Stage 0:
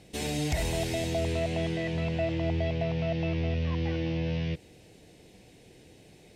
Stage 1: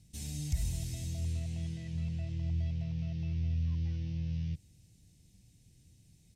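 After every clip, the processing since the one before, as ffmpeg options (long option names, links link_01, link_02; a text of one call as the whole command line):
ffmpeg -i in.wav -af "firequalizer=gain_entry='entry(100,0);entry(420,-27);entry(1000,-23);entry(6000,-4)':delay=0.05:min_phase=1,volume=-1dB" out.wav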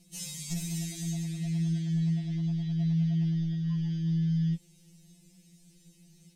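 ffmpeg -i in.wav -af "asoftclip=type=tanh:threshold=-24dB,afftfilt=real='re*2.83*eq(mod(b,8),0)':imag='im*2.83*eq(mod(b,8),0)':win_size=2048:overlap=0.75,volume=9dB" out.wav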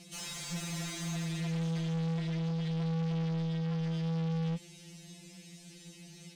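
ffmpeg -i in.wav -filter_complex "[0:a]asplit=2[link_01][link_02];[link_02]highpass=frequency=720:poles=1,volume=30dB,asoftclip=type=tanh:threshold=-21dB[link_03];[link_01][link_03]amix=inputs=2:normalize=0,lowpass=frequency=2600:poles=1,volume=-6dB,highshelf=frequency=11000:gain=-6,volume=-6dB" out.wav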